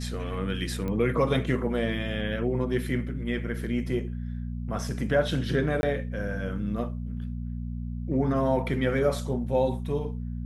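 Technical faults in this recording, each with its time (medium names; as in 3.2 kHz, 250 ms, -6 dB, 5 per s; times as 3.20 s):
hum 60 Hz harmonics 4 -33 dBFS
0.88 s: pop -21 dBFS
5.81–5.83 s: dropout 21 ms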